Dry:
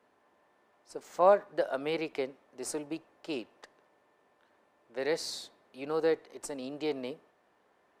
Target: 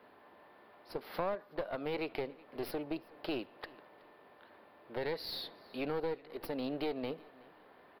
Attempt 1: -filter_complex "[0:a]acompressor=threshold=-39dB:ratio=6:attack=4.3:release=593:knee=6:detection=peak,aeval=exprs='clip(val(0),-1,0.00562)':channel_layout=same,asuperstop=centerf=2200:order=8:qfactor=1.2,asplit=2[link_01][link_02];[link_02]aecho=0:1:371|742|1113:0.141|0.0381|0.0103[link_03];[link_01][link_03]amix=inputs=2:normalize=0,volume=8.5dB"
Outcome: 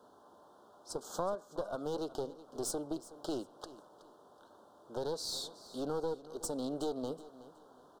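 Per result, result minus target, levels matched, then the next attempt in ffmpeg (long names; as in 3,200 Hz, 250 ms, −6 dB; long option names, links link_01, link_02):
8,000 Hz band +19.5 dB; echo-to-direct +6.5 dB
-filter_complex "[0:a]acompressor=threshold=-39dB:ratio=6:attack=4.3:release=593:knee=6:detection=peak,aeval=exprs='clip(val(0),-1,0.00562)':channel_layout=same,asuperstop=centerf=7400:order=8:qfactor=1.2,asplit=2[link_01][link_02];[link_02]aecho=0:1:371|742|1113:0.141|0.0381|0.0103[link_03];[link_01][link_03]amix=inputs=2:normalize=0,volume=8.5dB"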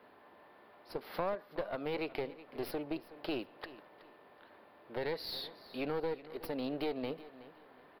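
echo-to-direct +6.5 dB
-filter_complex "[0:a]acompressor=threshold=-39dB:ratio=6:attack=4.3:release=593:knee=6:detection=peak,aeval=exprs='clip(val(0),-1,0.00562)':channel_layout=same,asuperstop=centerf=7400:order=8:qfactor=1.2,asplit=2[link_01][link_02];[link_02]aecho=0:1:371|742:0.0668|0.018[link_03];[link_01][link_03]amix=inputs=2:normalize=0,volume=8.5dB"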